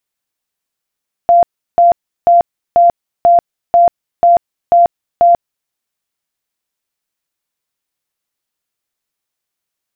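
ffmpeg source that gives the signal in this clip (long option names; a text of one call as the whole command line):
ffmpeg -f lavfi -i "aevalsrc='0.631*sin(2*PI*691*mod(t,0.49))*lt(mod(t,0.49),96/691)':duration=4.41:sample_rate=44100" out.wav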